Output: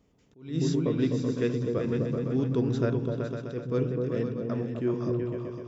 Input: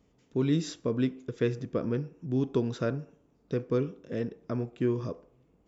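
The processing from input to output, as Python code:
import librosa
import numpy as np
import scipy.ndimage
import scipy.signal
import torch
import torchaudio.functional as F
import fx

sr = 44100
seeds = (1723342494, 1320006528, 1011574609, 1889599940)

y = fx.echo_opening(x, sr, ms=127, hz=200, octaves=2, feedback_pct=70, wet_db=0)
y = fx.attack_slew(y, sr, db_per_s=140.0)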